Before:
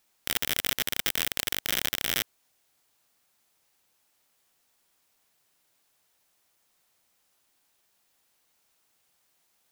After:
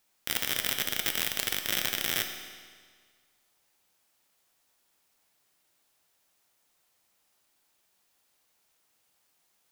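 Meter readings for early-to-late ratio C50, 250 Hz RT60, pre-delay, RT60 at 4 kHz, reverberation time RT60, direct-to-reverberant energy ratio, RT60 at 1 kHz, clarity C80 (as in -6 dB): 7.0 dB, 1.7 s, 8 ms, 1.6 s, 1.7 s, 4.5 dB, 1.7 s, 8.0 dB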